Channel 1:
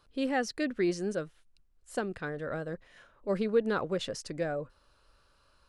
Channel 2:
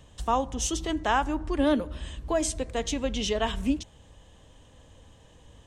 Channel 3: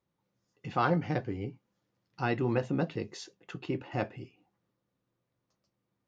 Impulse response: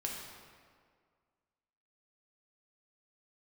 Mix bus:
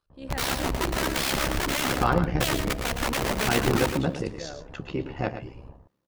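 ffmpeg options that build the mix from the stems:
-filter_complex "[0:a]volume=-15dB,asplit=2[a][b];[b]volume=-6dB[c];[1:a]asoftclip=type=tanh:threshold=-24.5dB,lowpass=f=1.2k:w=0.5412,lowpass=f=1.2k:w=1.3066,aeval=exprs='(mod(29.9*val(0)+1,2)-1)/29.9':c=same,adelay=100,volume=0dB,asplit=3[d][e][f];[e]volume=-13.5dB[g];[f]volume=-5.5dB[h];[2:a]adelay=1250,volume=-2dB,asplit=2[i][j];[j]volume=-10.5dB[k];[3:a]atrim=start_sample=2205[l];[c][g]amix=inputs=2:normalize=0[m];[m][l]afir=irnorm=-1:irlink=0[n];[h][k]amix=inputs=2:normalize=0,aecho=0:1:113:1[o];[a][d][i][n][o]amix=inputs=5:normalize=0,tremolo=f=68:d=0.667,dynaudnorm=f=180:g=3:m=8.5dB"

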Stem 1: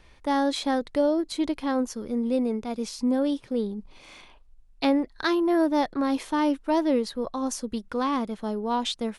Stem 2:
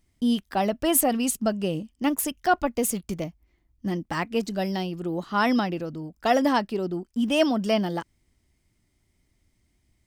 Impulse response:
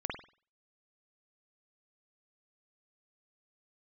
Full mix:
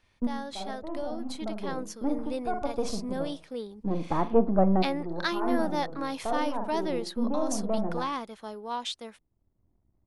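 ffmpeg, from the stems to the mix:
-filter_complex "[0:a]highpass=f=790:p=1,volume=-9.5dB,asplit=2[a][b];[1:a]aeval=exprs='if(lt(val(0),0),0.251*val(0),val(0))':c=same,lowpass=f=1.1k:w=0.5412,lowpass=f=1.1k:w=1.3066,alimiter=limit=-18dB:level=0:latency=1:release=204,volume=0dB,asplit=2[c][d];[d]volume=-16.5dB[e];[b]apad=whole_len=443674[f];[c][f]sidechaincompress=threshold=-54dB:ratio=8:attack=8.7:release=598[g];[2:a]atrim=start_sample=2205[h];[e][h]afir=irnorm=-1:irlink=0[i];[a][g][i]amix=inputs=3:normalize=0,dynaudnorm=f=460:g=7:m=8dB"

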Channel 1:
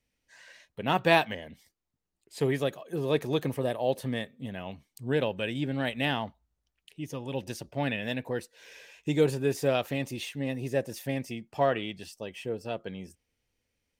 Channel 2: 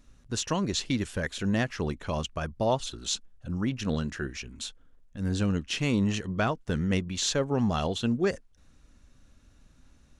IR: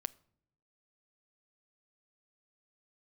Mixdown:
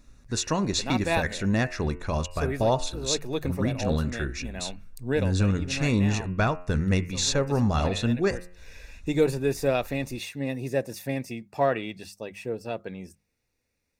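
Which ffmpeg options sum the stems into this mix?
-filter_complex "[0:a]bandreject=f=50:t=h:w=6,bandreject=f=100:t=h:w=6,bandreject=f=150:t=h:w=6,bandreject=f=200:t=h:w=6,volume=2dB[a];[1:a]bandreject=f=89.14:t=h:w=4,bandreject=f=178.28:t=h:w=4,bandreject=f=267.42:t=h:w=4,bandreject=f=356.56:t=h:w=4,bandreject=f=445.7:t=h:w=4,bandreject=f=534.84:t=h:w=4,bandreject=f=623.98:t=h:w=4,bandreject=f=713.12:t=h:w=4,bandreject=f=802.26:t=h:w=4,bandreject=f=891.4:t=h:w=4,bandreject=f=980.54:t=h:w=4,bandreject=f=1.06968k:t=h:w=4,bandreject=f=1.15882k:t=h:w=4,bandreject=f=1.24796k:t=h:w=4,bandreject=f=1.3371k:t=h:w=4,bandreject=f=1.42624k:t=h:w=4,bandreject=f=1.51538k:t=h:w=4,bandreject=f=1.60452k:t=h:w=4,bandreject=f=1.69366k:t=h:w=4,bandreject=f=1.7828k:t=h:w=4,bandreject=f=1.87194k:t=h:w=4,bandreject=f=1.96108k:t=h:w=4,bandreject=f=2.05022k:t=h:w=4,bandreject=f=2.13936k:t=h:w=4,bandreject=f=2.2285k:t=h:w=4,bandreject=f=2.31764k:t=h:w=4,bandreject=f=2.40678k:t=h:w=4,bandreject=f=2.49592k:t=h:w=4,bandreject=f=2.58506k:t=h:w=4,bandreject=f=2.6742k:t=h:w=4,bandreject=f=2.76334k:t=h:w=4,bandreject=f=2.85248k:t=h:w=4,asubboost=boost=2.5:cutoff=110,volume=3dB,asplit=2[b][c];[c]apad=whole_len=617304[d];[a][d]sidechaincompress=threshold=-28dB:ratio=8:attack=23:release=825[e];[e][b]amix=inputs=2:normalize=0,asuperstop=centerf=3100:order=4:qfactor=6"

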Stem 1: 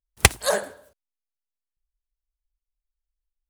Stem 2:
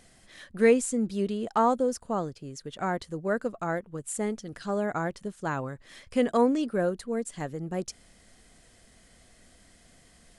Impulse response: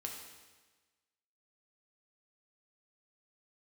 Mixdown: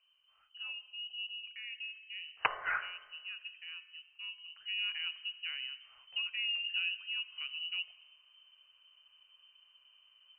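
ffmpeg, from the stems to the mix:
-filter_complex "[0:a]highpass=f=1.3k:w=0.5412,highpass=f=1.3k:w=1.3066,adelay=2200,volume=-2.5dB,asplit=2[a][b];[b]volume=-9dB[c];[1:a]highshelf=f=2.1k:g=11.5,alimiter=limit=-17.5dB:level=0:latency=1:release=171,tiltshelf=f=770:g=9,volume=-16.5dB,afade=t=in:st=4.4:d=0.48:silence=0.421697,asplit=2[d][e];[e]volume=-3.5dB[f];[2:a]atrim=start_sample=2205[g];[c][f]amix=inputs=2:normalize=0[h];[h][g]afir=irnorm=-1:irlink=0[i];[a][d][i]amix=inputs=3:normalize=0,aeval=exprs='(mod(2.66*val(0)+1,2)-1)/2.66':c=same,lowpass=f=2.6k:t=q:w=0.5098,lowpass=f=2.6k:t=q:w=0.6013,lowpass=f=2.6k:t=q:w=0.9,lowpass=f=2.6k:t=q:w=2.563,afreqshift=-3100,equalizer=f=240:t=o:w=1.3:g=-15"

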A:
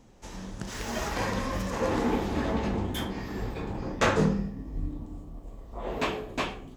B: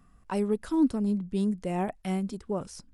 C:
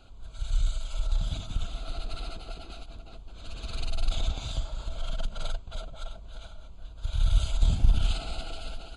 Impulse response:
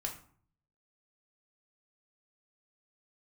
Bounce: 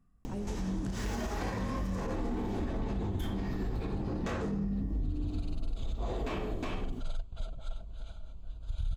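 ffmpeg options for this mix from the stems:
-filter_complex "[0:a]acompressor=mode=upward:threshold=-43dB:ratio=2.5,adelay=250,volume=1dB,asplit=2[a][b];[b]volume=-6.5dB[c];[1:a]volume=-16.5dB[d];[2:a]adelay=1650,volume=-9dB[e];[a][d]amix=inputs=2:normalize=0,asoftclip=type=tanh:threshold=-27.5dB,alimiter=level_in=11.5dB:limit=-24dB:level=0:latency=1,volume=-11.5dB,volume=0dB[f];[3:a]atrim=start_sample=2205[g];[c][g]afir=irnorm=-1:irlink=0[h];[e][f][h]amix=inputs=3:normalize=0,lowshelf=f=440:g=9.5,alimiter=level_in=2dB:limit=-24dB:level=0:latency=1:release=202,volume=-2dB"

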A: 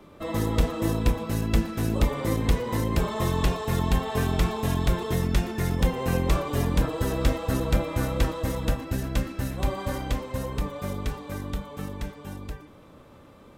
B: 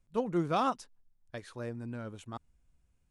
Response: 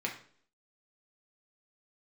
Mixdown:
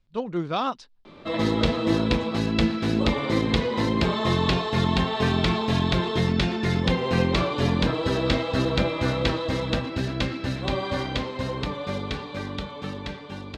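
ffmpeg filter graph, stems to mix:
-filter_complex "[0:a]highpass=76,adelay=1050,volume=1dB,asplit=2[a][b];[b]volume=-10.5dB[c];[1:a]volume=2.5dB[d];[2:a]atrim=start_sample=2205[e];[c][e]afir=irnorm=-1:irlink=0[f];[a][d][f]amix=inputs=3:normalize=0,lowpass=f=4.1k:t=q:w=2.3"

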